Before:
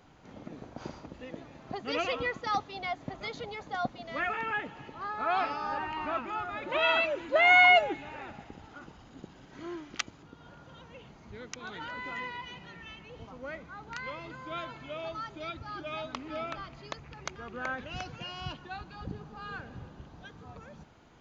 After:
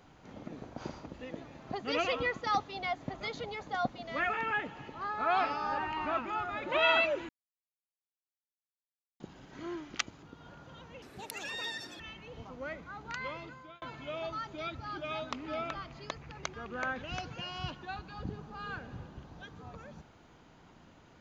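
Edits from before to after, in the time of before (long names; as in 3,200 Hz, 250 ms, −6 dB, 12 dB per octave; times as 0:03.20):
0:07.29–0:09.20: silence
0:11.02–0:12.82: play speed 184%
0:14.16–0:14.64: fade out linear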